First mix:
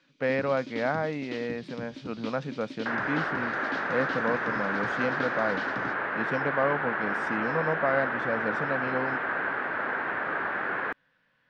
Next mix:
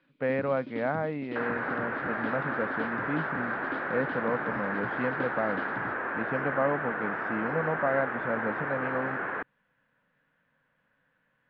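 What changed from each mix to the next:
second sound: entry −1.50 s
master: add high-frequency loss of the air 410 metres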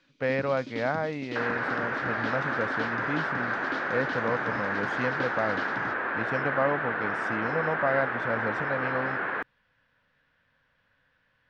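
speech: add low shelf with overshoot 120 Hz +9.5 dB, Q 1.5
master: remove high-frequency loss of the air 410 metres

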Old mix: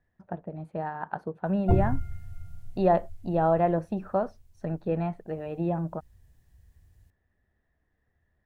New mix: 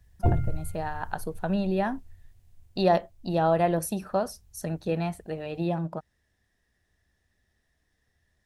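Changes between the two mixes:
speech: remove low-pass filter 1,600 Hz 12 dB per octave
background: entry −1.45 s

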